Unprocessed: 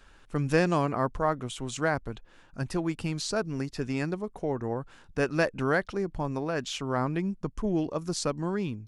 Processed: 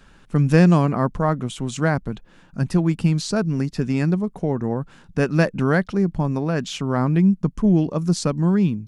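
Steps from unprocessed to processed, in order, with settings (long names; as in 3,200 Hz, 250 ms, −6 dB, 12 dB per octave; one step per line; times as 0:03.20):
parametric band 180 Hz +12 dB 0.98 octaves
level +4 dB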